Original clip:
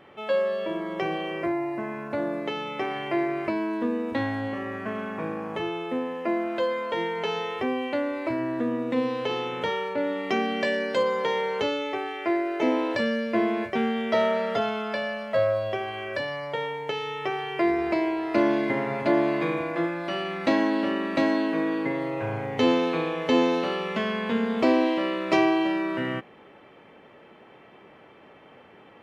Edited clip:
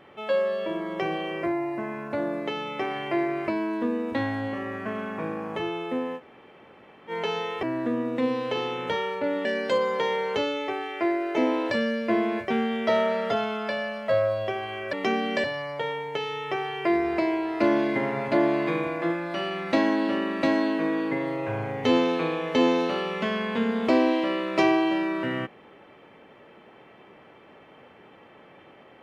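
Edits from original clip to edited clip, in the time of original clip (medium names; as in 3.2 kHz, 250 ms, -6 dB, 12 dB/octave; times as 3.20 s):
6.18–7.10 s: room tone, crossfade 0.06 s
7.63–8.37 s: delete
10.19–10.70 s: move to 16.18 s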